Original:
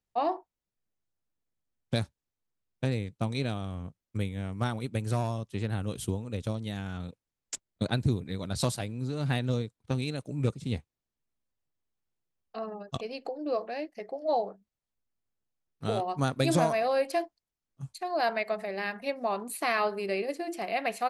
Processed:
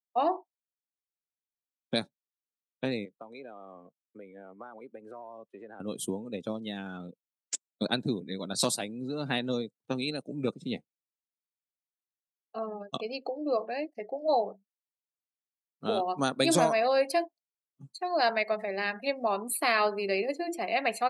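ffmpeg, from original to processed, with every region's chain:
ffmpeg -i in.wav -filter_complex "[0:a]asettb=1/sr,asplit=3[link_01][link_02][link_03];[link_01]atrim=end=3.054[link_04];[link_02]atrim=start=3.05:end=5.8,asetpts=PTS-STARTPTS,afade=type=in:duration=0.004:curve=qsin,afade=type=out:start_time=2.746:duration=0.004:curve=qsin,acrossover=split=360 2200:gain=0.141 1 0.224[link_05][link_06][link_07];[link_05][link_06][link_07]amix=inputs=3:normalize=0,acompressor=threshold=-41dB:ratio=5:attack=3.2:release=140:knee=1:detection=peak[link_08];[link_03]atrim=start=5.796[link_09];[link_04][link_08]acrossfade=duration=0.004:curve1=hsin:curve2=qsin[link_10];[link_10][link_09]acrossfade=duration=0.004:curve1=qsin:curve2=hsin,afftdn=noise_reduction=20:noise_floor=-46,highpass=frequency=190:width=0.5412,highpass=frequency=190:width=1.3066,adynamicequalizer=threshold=0.00447:dfrequency=2900:dqfactor=0.7:tfrequency=2900:tqfactor=0.7:attack=5:release=100:ratio=0.375:range=3:mode=boostabove:tftype=highshelf,volume=1.5dB" out.wav

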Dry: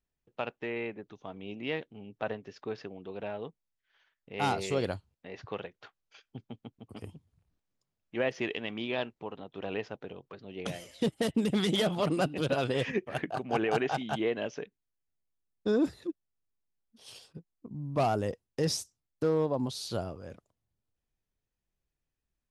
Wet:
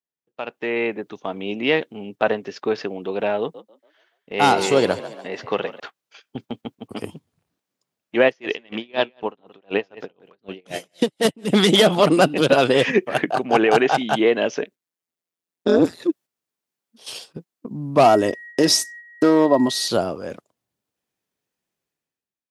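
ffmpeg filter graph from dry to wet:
ffmpeg -i in.wav -filter_complex "[0:a]asettb=1/sr,asplit=3[link_01][link_02][link_03];[link_01]atrim=end=3.404[link_04];[link_02]atrim=start=3.4:end=5.8,asetpts=PTS-STARTPTS,afade=type=in:duration=0.004:curve=qsin,afade=type=out:start_time=2.396:duration=0.004:curve=qsin,bandreject=frequency=2400:width=19,asplit=6[link_05][link_06][link_07][link_08][link_09][link_10];[link_06]adelay=142,afreqshift=49,volume=-15dB[link_11];[link_07]adelay=284,afreqshift=98,volume=-21.2dB[link_12];[link_08]adelay=426,afreqshift=147,volume=-27.4dB[link_13];[link_09]adelay=568,afreqshift=196,volume=-33.6dB[link_14];[link_10]adelay=710,afreqshift=245,volume=-39.8dB[link_15];[link_05][link_11][link_12][link_13][link_14][link_15]amix=inputs=6:normalize=0,atrim=end_sample=105840[link_16];[link_03]atrim=start=5.796[link_17];[link_04][link_16]acrossfade=duration=0.004:curve1=hsin:curve2=qsin[link_18];[link_18][link_17]acrossfade=duration=0.004:curve1=qsin:curve2=hsin,asettb=1/sr,asplit=3[link_19][link_20][link_21];[link_19]atrim=end=8.264[link_22];[link_20]atrim=start=8.26:end=11.5,asetpts=PTS-STARTPTS,afade=type=in:duration=0.004:curve=qsin,afade=type=out:start_time=3.236:duration=0.004:curve=qsin,aecho=1:1:176:0.224,atrim=end_sample=142884,aeval=exprs='val(0)*pow(10,-31*(0.5-0.5*cos(2*PI*4*n/s))/20)':channel_layout=same[link_23];[link_21]atrim=start=11.496[link_24];[link_22][link_23]acrossfade=duration=0.004:curve1=hsin:curve2=qsin[link_25];[link_25][link_24]acrossfade=duration=0.004:curve1=qsin:curve2=hsin,asettb=1/sr,asplit=3[link_26][link_27][link_28];[link_26]atrim=end=14.624[link_29];[link_27]atrim=start=14.62:end=16,asetpts=PTS-STARTPTS,afade=type=in:duration=0.004:curve=qsin,afade=type=out:start_time=1.376:duration=0.004:curve=qsin,highpass=63,tremolo=f=170:d=0.919[link_30];[link_28]atrim=start=15.996[link_31];[link_29][link_30]acrossfade=duration=0.004:curve1=hsin:curve2=qsin[link_32];[link_32][link_31]acrossfade=duration=0.004:curve1=qsin:curve2=hsin,asettb=1/sr,asplit=3[link_33][link_34][link_35];[link_33]atrim=end=18.054[link_36];[link_34]atrim=start=18.05:end=19.88,asetpts=PTS-STARTPTS,afade=type=in:duration=0.004:curve=qsin,afade=type=out:start_time=1.826:duration=0.004:curve=qsin,aeval=exprs='val(0)+0.002*sin(2*PI*1900*n/s)':channel_layout=same,aecho=1:1:3.1:0.54,atrim=end_sample=80703[link_37];[link_35]atrim=start=19.876[link_38];[link_36][link_37]acrossfade=duration=0.004:curve1=hsin:curve2=qsin[link_39];[link_39][link_38]acrossfade=duration=0.004:curve1=qsin:curve2=hsin,highpass=210,agate=range=-7dB:threshold=-53dB:ratio=16:detection=peak,dynaudnorm=framelen=140:gausssize=9:maxgain=16dB" out.wav

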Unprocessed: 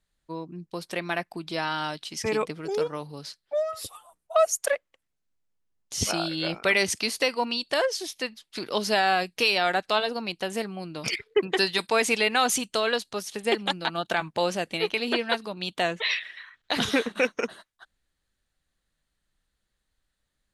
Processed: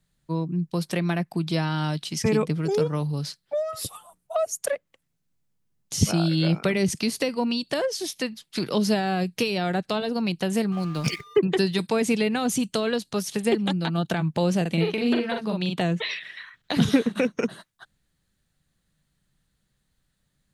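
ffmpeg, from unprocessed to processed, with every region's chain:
ffmpeg -i in.wav -filter_complex "[0:a]asettb=1/sr,asplit=3[link_01][link_02][link_03];[link_01]atrim=end=10.724[link_04];[link_02]atrim=start=10.72:end=11.39,asetpts=PTS-STARTPTS,afade=type=in:duration=0.004:curve=qsin,afade=type=out:start_time=0.666:duration=0.004:curve=qsin,aeval=exprs='val(0)+0.00891*sin(2*PI*1200*n/s)':channel_layout=same,aeval=exprs='sgn(val(0))*max(abs(val(0))-0.00422,0)':channel_layout=same[link_05];[link_03]atrim=start=11.386[link_06];[link_04][link_05]acrossfade=duration=0.004:curve1=hsin:curve2=qsin[link_07];[link_07][link_06]acrossfade=duration=0.004:curve1=qsin:curve2=hsin,asettb=1/sr,asplit=3[link_08][link_09][link_10];[link_08]atrim=end=14.614[link_11];[link_09]atrim=start=14.61:end=15.81,asetpts=PTS-STARTPTS,afade=type=in:duration=0.004:curve=qsin,afade=type=out:start_time=1.196:duration=0.004:curve=qsin,asplit=2[link_12][link_13];[link_13]adelay=42,volume=-3.5dB[link_14];[link_12][link_14]amix=inputs=2:normalize=0,atrim=end_sample=52920,acrossover=split=1300|3900[link_15][link_16][link_17];[link_15]acompressor=threshold=-26dB:ratio=4[link_18];[link_16]acompressor=threshold=-33dB:ratio=4[link_19];[link_17]acompressor=threshold=-48dB:ratio=4[link_20];[link_18][link_19][link_20]amix=inputs=3:normalize=0[link_21];[link_10]atrim=start=15.806[link_22];[link_11][link_21]acrossfade=duration=0.004:curve1=hsin:curve2=qsin[link_23];[link_23][link_22]acrossfade=duration=0.004:curve1=qsin:curve2=hsin,equalizer=frequency=150:width=1.1:gain=14,acrossover=split=480[link_24][link_25];[link_25]acompressor=threshold=-31dB:ratio=6[link_26];[link_24][link_26]amix=inputs=2:normalize=0,highshelf=frequency=6200:gain=4.5,volume=2.5dB" out.wav

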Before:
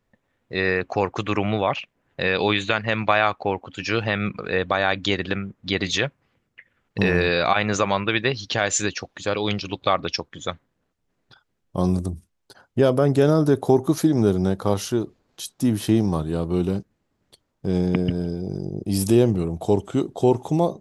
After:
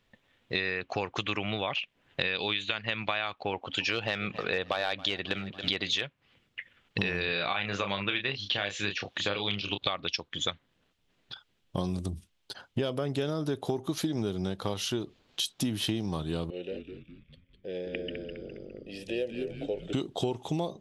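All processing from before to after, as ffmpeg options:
ffmpeg -i in.wav -filter_complex "[0:a]asettb=1/sr,asplit=3[link_01][link_02][link_03];[link_01]atrim=end=3.534[link_04];[link_02]atrim=start=3.53:end=6.03,asetpts=PTS-STARTPTS,afade=type=in:duration=0.004:curve=qsin,afade=type=out:start_time=2.496:duration=0.004:curve=qsin,equalizer=frequency=680:width=0.75:gain=6.5,asoftclip=type=hard:threshold=-7.5dB,aecho=1:1:276|552|828:0.0891|0.0383|0.0165,atrim=end_sample=110250[link_05];[link_03]atrim=start=6.026[link_06];[link_04][link_05]acrossfade=duration=0.004:curve1=hsin:curve2=qsin[link_07];[link_07][link_06]acrossfade=duration=0.004:curve1=qsin:curve2=hsin,asettb=1/sr,asplit=3[link_08][link_09][link_10];[link_08]atrim=end=7.254[link_11];[link_09]atrim=start=7.25:end=9.78,asetpts=PTS-STARTPTS,afade=type=in:duration=0.004:curve=qsin,afade=type=out:start_time=2.526:duration=0.004:curve=qsin,acrossover=split=3900[link_12][link_13];[link_13]acompressor=threshold=-45dB:ratio=4:attack=1:release=60[link_14];[link_12][link_14]amix=inputs=2:normalize=0,highpass=51,asplit=2[link_15][link_16];[link_16]adelay=30,volume=-6dB[link_17];[link_15][link_17]amix=inputs=2:normalize=0,atrim=end_sample=111573[link_18];[link_10]atrim=start=9.776[link_19];[link_11][link_18]acrossfade=duration=0.004:curve1=hsin:curve2=qsin[link_20];[link_20][link_19]acrossfade=duration=0.004:curve1=qsin:curve2=hsin,asettb=1/sr,asplit=3[link_21][link_22][link_23];[link_21]atrim=end=16.504[link_24];[link_22]atrim=start=16.5:end=19.93,asetpts=PTS-STARTPTS,afade=type=in:duration=0.004:curve=qsin,afade=type=out:start_time=3.426:duration=0.004:curve=qsin,asplit=3[link_25][link_26][link_27];[link_25]bandpass=frequency=530:width_type=q:width=8,volume=0dB[link_28];[link_26]bandpass=frequency=1840:width_type=q:width=8,volume=-6dB[link_29];[link_27]bandpass=frequency=2480:width_type=q:width=8,volume=-9dB[link_30];[link_28][link_29][link_30]amix=inputs=3:normalize=0,asplit=7[link_31][link_32][link_33][link_34][link_35][link_36][link_37];[link_32]adelay=205,afreqshift=-110,volume=-7dB[link_38];[link_33]adelay=410,afreqshift=-220,volume=-13.4dB[link_39];[link_34]adelay=615,afreqshift=-330,volume=-19.8dB[link_40];[link_35]adelay=820,afreqshift=-440,volume=-26.1dB[link_41];[link_36]adelay=1025,afreqshift=-550,volume=-32.5dB[link_42];[link_37]adelay=1230,afreqshift=-660,volume=-38.9dB[link_43];[link_31][link_38][link_39][link_40][link_41][link_42][link_43]amix=inputs=7:normalize=0,atrim=end_sample=151263[link_44];[link_23]atrim=start=19.926[link_45];[link_24][link_44]acrossfade=duration=0.004:curve1=hsin:curve2=qsin[link_46];[link_46][link_45]acrossfade=duration=0.004:curve1=qsin:curve2=hsin,equalizer=frequency=3200:width_type=o:width=1.2:gain=13,acompressor=threshold=-28dB:ratio=6" out.wav

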